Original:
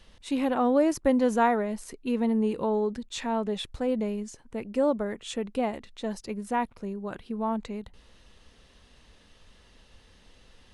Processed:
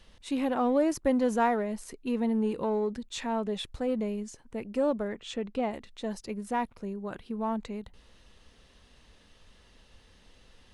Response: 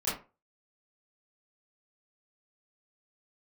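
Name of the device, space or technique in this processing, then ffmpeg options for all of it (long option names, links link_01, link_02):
parallel distortion: -filter_complex "[0:a]asettb=1/sr,asplit=3[link_01][link_02][link_03];[link_01]atrim=end=5.084[link_04];[link_02]atrim=start=5.08:end=5.71,asetpts=PTS-STARTPTS,afade=type=in:duration=0.004:curve=qsin,afade=type=out:start_time=0.626:duration=0.004:curve=qsin,lowpass=5800[link_05];[link_03]atrim=start=5.706[link_06];[link_04][link_05]acrossfade=duration=0.004:curve1=hsin:curve2=qsin[link_07];[link_07][link_06]acrossfade=duration=0.004:curve1=qsin:curve2=hsin,asplit=2[link_08][link_09];[link_09]asoftclip=type=hard:threshold=-27.5dB,volume=-12.5dB[link_10];[link_08][link_10]amix=inputs=2:normalize=0,volume=-3.5dB"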